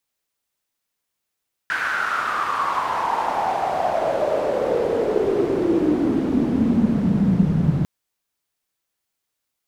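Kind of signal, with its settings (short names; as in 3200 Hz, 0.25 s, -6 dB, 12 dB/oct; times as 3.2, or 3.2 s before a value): swept filtered noise pink, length 6.15 s bandpass, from 1600 Hz, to 150 Hz, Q 6.2, exponential, gain ramp +6 dB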